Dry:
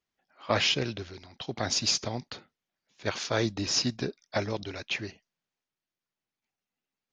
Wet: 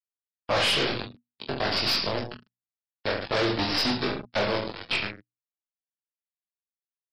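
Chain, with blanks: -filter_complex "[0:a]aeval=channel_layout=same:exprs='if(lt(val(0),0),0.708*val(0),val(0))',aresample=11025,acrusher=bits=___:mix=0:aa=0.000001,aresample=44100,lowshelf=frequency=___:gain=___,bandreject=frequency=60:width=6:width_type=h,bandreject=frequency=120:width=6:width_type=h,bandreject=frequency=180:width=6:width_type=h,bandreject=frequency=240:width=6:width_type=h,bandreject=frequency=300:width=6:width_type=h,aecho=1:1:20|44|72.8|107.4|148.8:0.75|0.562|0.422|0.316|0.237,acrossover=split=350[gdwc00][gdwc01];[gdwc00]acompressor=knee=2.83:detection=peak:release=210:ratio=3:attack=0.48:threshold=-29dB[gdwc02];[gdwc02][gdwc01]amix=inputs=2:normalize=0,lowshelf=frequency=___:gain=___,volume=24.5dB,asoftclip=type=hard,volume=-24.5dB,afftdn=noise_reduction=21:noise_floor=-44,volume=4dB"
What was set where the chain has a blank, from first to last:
4, 280, 6, 85, -8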